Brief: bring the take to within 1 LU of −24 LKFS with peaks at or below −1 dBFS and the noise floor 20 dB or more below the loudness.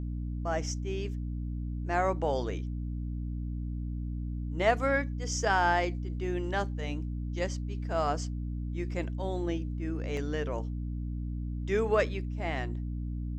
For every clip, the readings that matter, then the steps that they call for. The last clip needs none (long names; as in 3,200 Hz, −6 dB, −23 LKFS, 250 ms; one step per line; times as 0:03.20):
number of dropouts 1; longest dropout 1.3 ms; mains hum 60 Hz; hum harmonics up to 300 Hz; level of the hum −32 dBFS; integrated loudness −32.5 LKFS; sample peak −11.5 dBFS; target loudness −24.0 LKFS
→ repair the gap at 0:10.17, 1.3 ms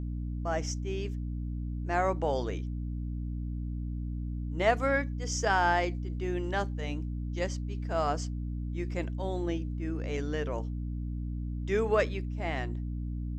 number of dropouts 0; mains hum 60 Hz; hum harmonics up to 300 Hz; level of the hum −32 dBFS
→ mains-hum notches 60/120/180/240/300 Hz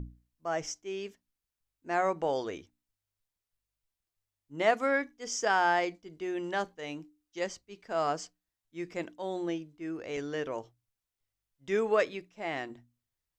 mains hum none found; integrated loudness −32.5 LKFS; sample peak −12.5 dBFS; target loudness −24.0 LKFS
→ level +8.5 dB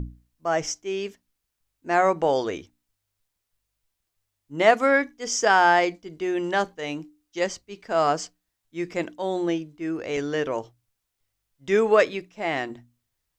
integrated loudness −24.0 LKFS; sample peak −4.0 dBFS; background noise floor −81 dBFS